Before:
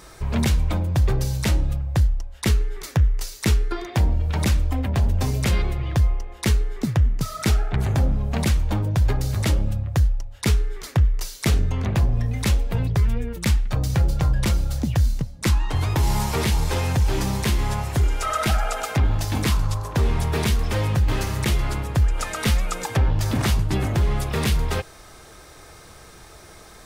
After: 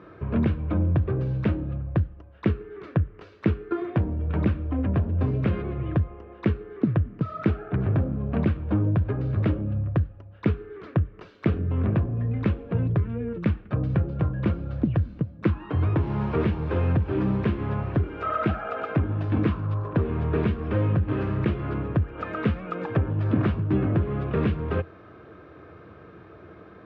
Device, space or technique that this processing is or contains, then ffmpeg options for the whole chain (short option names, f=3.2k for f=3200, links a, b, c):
bass amplifier: -af "acompressor=threshold=-19dB:ratio=4,highpass=f=83:w=0.5412,highpass=f=83:w=1.3066,equalizer=f=87:t=q:w=4:g=4,equalizer=f=190:t=q:w=4:g=4,equalizer=f=310:t=q:w=4:g=7,equalizer=f=450:t=q:w=4:g=3,equalizer=f=840:t=q:w=4:g=-9,equalizer=f=2k:t=q:w=4:g=-9,lowpass=f=2.2k:w=0.5412,lowpass=f=2.2k:w=1.3066"